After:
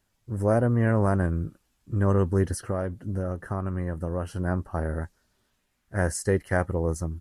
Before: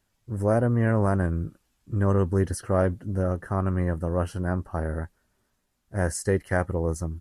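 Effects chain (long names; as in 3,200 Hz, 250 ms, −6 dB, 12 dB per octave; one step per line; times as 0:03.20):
0:02.55–0:04.38: downward compressor 5 to 1, threshold −25 dBFS, peak gain reduction 7.5 dB
0:05.00–0:06.00: parametric band 7,000 Hz → 1,500 Hz +7 dB 1.1 octaves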